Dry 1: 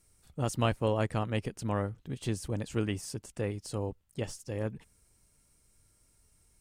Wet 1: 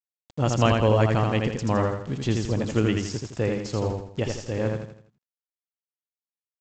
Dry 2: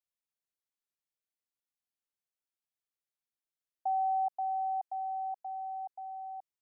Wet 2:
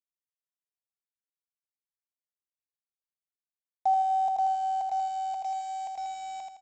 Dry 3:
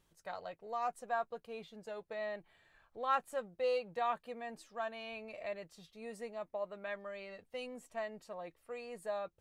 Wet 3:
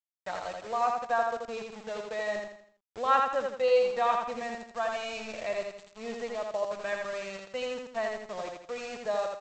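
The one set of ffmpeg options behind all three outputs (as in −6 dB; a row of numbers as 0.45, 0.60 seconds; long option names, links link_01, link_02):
-af "adynamicequalizer=threshold=0.00112:dfrequency=3900:dqfactor=2.7:tfrequency=3900:tqfactor=2.7:attack=5:release=100:ratio=0.375:range=1.5:mode=cutabove:tftype=bell,aresample=16000,aeval=exprs='val(0)*gte(abs(val(0)),0.00376)':channel_layout=same,aresample=44100,aecho=1:1:82|164|246|328|410:0.668|0.267|0.107|0.0428|0.0171,volume=7.5dB"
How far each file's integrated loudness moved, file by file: +9.0, +5.5, +9.5 LU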